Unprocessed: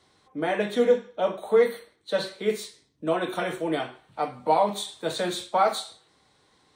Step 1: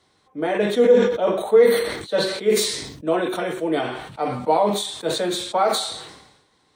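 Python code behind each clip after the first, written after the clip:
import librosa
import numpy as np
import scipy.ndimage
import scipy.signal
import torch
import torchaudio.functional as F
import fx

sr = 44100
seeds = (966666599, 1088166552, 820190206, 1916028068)

y = fx.dynamic_eq(x, sr, hz=400.0, q=1.2, threshold_db=-35.0, ratio=4.0, max_db=6)
y = fx.sustainer(y, sr, db_per_s=57.0)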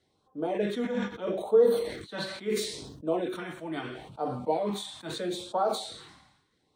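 y = fx.filter_lfo_notch(x, sr, shape='sine', hz=0.76, low_hz=420.0, high_hz=2200.0, q=0.9)
y = fx.high_shelf(y, sr, hz=3100.0, db=-7.5)
y = y * 10.0 ** (-6.5 / 20.0)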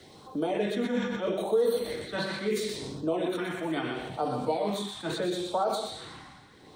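y = x + 10.0 ** (-6.5 / 20.0) * np.pad(x, (int(121 * sr / 1000.0), 0))[:len(x)]
y = fx.band_squash(y, sr, depth_pct=70)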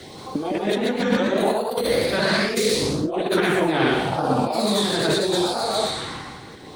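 y = fx.over_compress(x, sr, threshold_db=-32.0, ratio=-0.5)
y = fx.echo_pitch(y, sr, ms=178, semitones=1, count=3, db_per_echo=-3.0)
y = y * 10.0 ** (9.0 / 20.0)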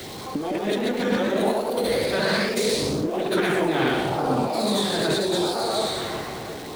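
y = x + 0.5 * 10.0 ** (-31.0 / 20.0) * np.sign(x)
y = fx.echo_wet_bandpass(y, sr, ms=356, feedback_pct=59, hz=410.0, wet_db=-8.5)
y = y * 10.0 ** (-3.5 / 20.0)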